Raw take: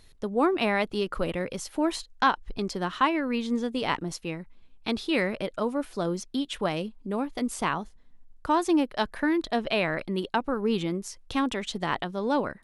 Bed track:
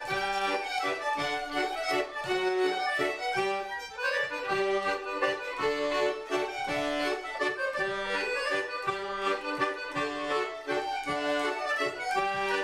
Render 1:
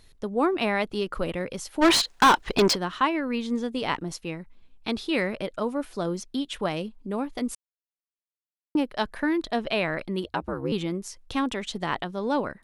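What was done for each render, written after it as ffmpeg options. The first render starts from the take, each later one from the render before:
-filter_complex "[0:a]asplit=3[a][b][c];[a]afade=t=out:st=1.81:d=0.02[d];[b]asplit=2[e][f];[f]highpass=f=720:p=1,volume=31dB,asoftclip=type=tanh:threshold=-9.5dB[g];[e][g]amix=inputs=2:normalize=0,lowpass=f=4.1k:p=1,volume=-6dB,afade=t=in:st=1.81:d=0.02,afade=t=out:st=2.74:d=0.02[h];[c]afade=t=in:st=2.74:d=0.02[i];[d][h][i]amix=inputs=3:normalize=0,asettb=1/sr,asplit=3[j][k][l];[j]atrim=end=10.244[m];[k]atrim=start=10.24:end=10.72,asetpts=PTS-STARTPTS,afade=t=in:d=0.004:c=qsin,afade=t=out:st=0.476:d=0.004:c=qsin,aeval=exprs='val(0)*sin(2*PI*67*n/s)':c=same[n];[l]atrim=start=10.716[o];[m][n]acrossfade=d=0.004:c1=hsin:c2=qsin[p];[p][o]acrossfade=d=0.004:c1=qsin:c2=hsin,asplit=3[q][r][s];[q]atrim=end=7.55,asetpts=PTS-STARTPTS,afade=t=out:st=7.546:d=0.004:c=hsin[t];[r]atrim=start=7.55:end=8.75,asetpts=PTS-STARTPTS,volume=0[u];[s]atrim=start=8.75,asetpts=PTS-STARTPTS,afade=t=in:d=0.004:c=hsin[v];[t][u][v]concat=n=3:v=0:a=1"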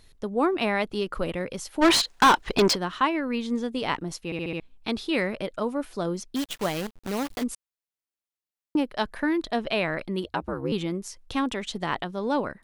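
-filter_complex "[0:a]asplit=3[a][b][c];[a]afade=t=out:st=6.35:d=0.02[d];[b]acrusher=bits=6:dc=4:mix=0:aa=0.000001,afade=t=in:st=6.35:d=0.02,afade=t=out:st=7.42:d=0.02[e];[c]afade=t=in:st=7.42:d=0.02[f];[d][e][f]amix=inputs=3:normalize=0,asplit=6[g][h][i][j][k][l];[g]atrim=end=4.322[m];[h]atrim=start=4.248:end=4.322[n];[i]atrim=start=4.248:end=4.322[o];[j]atrim=start=4.248:end=4.322[p];[k]atrim=start=4.248:end=4.322[q];[l]atrim=start=4.598[r];[m][n]acrossfade=d=0.004:c1=hsin:c2=hsin[s];[s][o]acrossfade=d=0.004:c1=hsin:c2=hsin[t];[t][p]acrossfade=d=0.004:c1=hsin:c2=hsin[u];[u][q]acrossfade=d=0.004:c1=hsin:c2=hsin[v];[v][r]acrossfade=d=0.004:c1=hsin:c2=hsin"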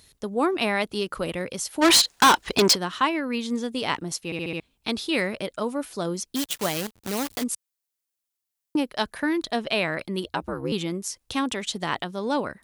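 -af "highpass=54,highshelf=f=4.2k:g=10.5"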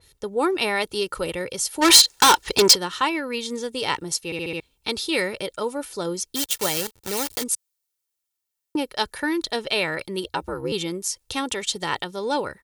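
-af "aecho=1:1:2.2:0.49,adynamicequalizer=threshold=0.0126:dfrequency=3400:dqfactor=0.7:tfrequency=3400:tqfactor=0.7:attack=5:release=100:ratio=0.375:range=3:mode=boostabove:tftype=highshelf"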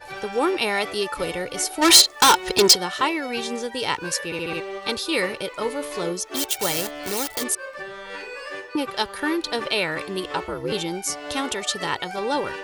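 -filter_complex "[1:a]volume=-4.5dB[a];[0:a][a]amix=inputs=2:normalize=0"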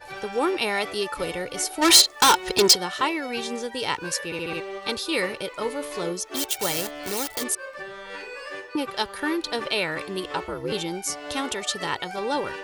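-af "volume=-2dB"

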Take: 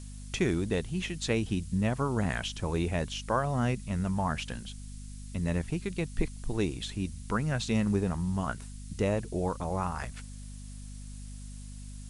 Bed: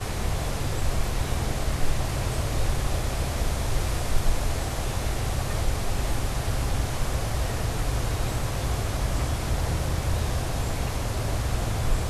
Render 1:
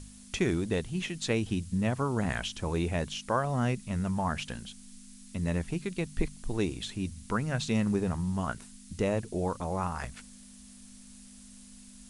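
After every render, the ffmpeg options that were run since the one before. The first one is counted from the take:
-af "bandreject=f=50:t=h:w=4,bandreject=f=100:t=h:w=4,bandreject=f=150:t=h:w=4"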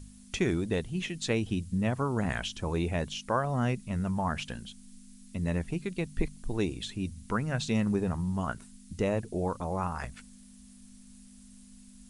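-af "afftdn=nr=6:nf=-51"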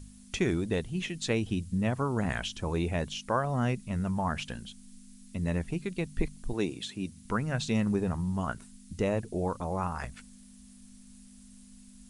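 -filter_complex "[0:a]asettb=1/sr,asplit=3[a][b][c];[a]atrim=end=6.534[d];[b]atrim=start=6.53:end=7.25,asetpts=PTS-STARTPTS,afade=t=in:d=0.004:c=qsin,afade=t=out:st=0.716:d=0.004:c=qsin,highpass=150[e];[c]atrim=start=7.246[f];[d][e]acrossfade=d=0.004:c1=hsin:c2=qsin[g];[g][f]acrossfade=d=0.004:c1=qsin:c2=hsin"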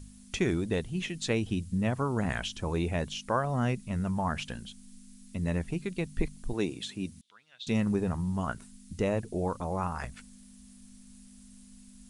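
-filter_complex "[0:a]asettb=1/sr,asplit=3[a][b][c];[a]atrim=end=7.214[d];[b]atrim=start=7.21:end=7.67,asetpts=PTS-STARTPTS,afade=t=in:d=0.004:c=qsin,afade=t=out:st=0.456:d=0.004:c=qsin,bandpass=f=3.5k:t=q:w=7.4[e];[c]atrim=start=7.666[f];[d][e]acrossfade=d=0.004:c1=hsin:c2=qsin[g];[g][f]acrossfade=d=0.004:c1=qsin:c2=hsin"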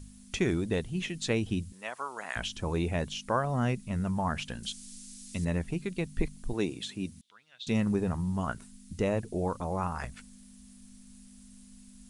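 -filter_complex "[0:a]asettb=1/sr,asplit=3[a][b][c];[a]atrim=end=1.724[d];[b]atrim=start=1.72:end=2.36,asetpts=PTS-STARTPTS,afade=t=in:d=0.004:c=qsin,afade=t=out:st=0.636:d=0.004:c=qsin,highpass=840[e];[c]atrim=start=2.356[f];[d][e]acrossfade=d=0.004:c1=hsin:c2=qsin[g];[g][f]acrossfade=d=0.004:c1=qsin:c2=hsin,asettb=1/sr,asplit=3[h][i][j];[h]atrim=end=4.634[k];[i]atrim=start=4.63:end=5.45,asetpts=PTS-STARTPTS,afade=t=in:d=0.004:c=qsin,afade=t=out:st=0.816:d=0.004:c=qsin,equalizer=f=6.1k:t=o:w=2.6:g=13[l];[j]atrim=start=5.446[m];[k][l]acrossfade=d=0.004:c1=hsin:c2=qsin[n];[n][m]acrossfade=d=0.004:c1=qsin:c2=hsin"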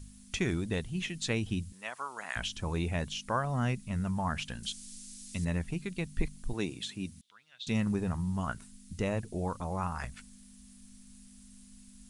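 -af "equalizer=f=430:w=0.73:g=-5.5"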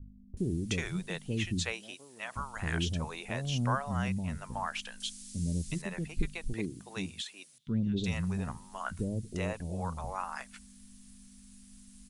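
-filter_complex "[0:a]acrossover=split=470[a][b];[b]adelay=370[c];[a][c]amix=inputs=2:normalize=0"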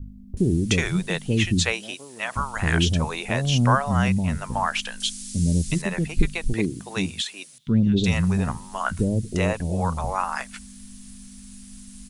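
-af "volume=11.5dB"

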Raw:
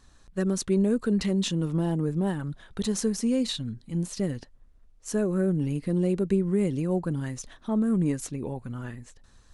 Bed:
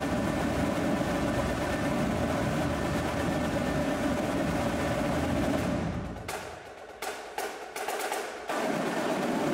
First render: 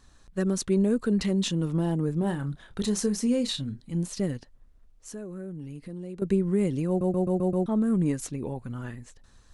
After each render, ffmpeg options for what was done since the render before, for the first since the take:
-filter_complex "[0:a]asettb=1/sr,asplit=3[a][b][c];[a]atrim=end=2.194[d];[b]atrim=start=2.19:end=3.81,asetpts=PTS-STARTPTS,afade=t=in:d=0.004:c=qsin,afade=t=out:st=1.616:d=0.004:c=qsin,asplit=2[e][f];[f]adelay=29,volume=-10dB[g];[e][g]amix=inputs=2:normalize=0,atrim=end_sample=71442[h];[c]atrim=start=3.806[i];[d][h]acrossfade=d=0.004:c1=hsin:c2=qsin[j];[j][i]acrossfade=d=0.004:c1=qsin:c2=hsin,asettb=1/sr,asplit=3[k][l][m];[k]atrim=end=4.374[n];[l]atrim=start=4.37:end=6.22,asetpts=PTS-STARTPTS,afade=t=in:d=0.004:c=qsin,afade=t=out:st=1.846:d=0.004:c=qsin,acompressor=threshold=-45dB:ratio=2:attack=3.2:release=140:knee=1:detection=peak[o];[m]atrim=start=6.216[p];[n][o]acrossfade=d=0.004:c1=hsin:c2=qsin[q];[q][p]acrossfade=d=0.004:c1=qsin:c2=hsin,asplit=7[r][s][t][u][v][w][x];[r]atrim=end=7.012[y];[s]atrim=start=6.878:end=7.012[z];[t]atrim=start=6.878:end=7.012[aa];[u]atrim=start=6.878:end=7.012[ab];[v]atrim=start=6.878:end=7.012[ac];[w]atrim=start=6.878:end=7.012[ad];[x]atrim=start=7.658[ae];[y][z]acrossfade=d=0.004:c1=hsin:c2=hsin[af];[af][aa]acrossfade=d=0.004:c1=hsin:c2=hsin[ag];[ag][ab]acrossfade=d=0.004:c1=hsin:c2=hsin[ah];[ah][ac]acrossfade=d=0.004:c1=hsin:c2=hsin[ai];[ai][ad]acrossfade=d=0.004:c1=hsin:c2=hsin[aj];[aj][ae]acrossfade=d=0.004:c1=hsin:c2=hsin"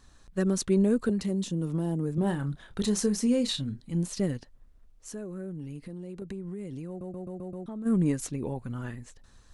-filter_complex "[0:a]asettb=1/sr,asplit=3[a][b][c];[a]atrim=end=1.094[d];[b]atrim=start=1.09:end=2.18,asetpts=PTS-STARTPTS,afade=t=in:d=0.004:c=qsin,afade=t=out:st=1.086:d=0.004:c=qsin,acrossover=split=96|700|5800[e][f][g][h];[e]acompressor=threshold=-54dB:ratio=3[i];[f]acompressor=threshold=-27dB:ratio=3[j];[g]acompressor=threshold=-50dB:ratio=3[k];[h]acompressor=threshold=-43dB:ratio=3[l];[i][j][k][l]amix=inputs=4:normalize=0[m];[c]atrim=start=2.176[n];[d][m]acrossfade=d=0.004:c1=hsin:c2=qsin[o];[o][n]acrossfade=d=0.004:c1=qsin:c2=hsin,asplit=3[p][q][r];[p]afade=t=out:st=5.77:d=0.02[s];[q]acompressor=threshold=-35dB:ratio=6:attack=3.2:release=140:knee=1:detection=peak,afade=t=in:st=5.77:d=0.02,afade=t=out:st=7.85:d=0.02[t];[r]afade=t=in:st=7.85:d=0.02[u];[s][t][u]amix=inputs=3:normalize=0"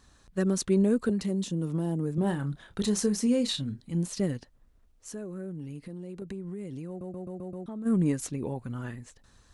-af "highpass=f=43:p=1"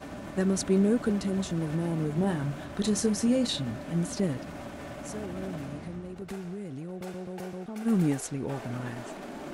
-filter_complex "[1:a]volume=-11.5dB[a];[0:a][a]amix=inputs=2:normalize=0"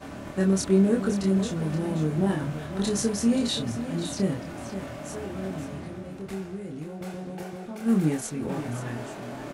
-filter_complex "[0:a]asplit=2[a][b];[b]adelay=26,volume=-2.5dB[c];[a][c]amix=inputs=2:normalize=0,aecho=1:1:528:0.282"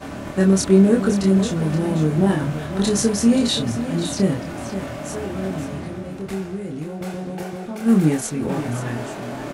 -af "volume=7dB"

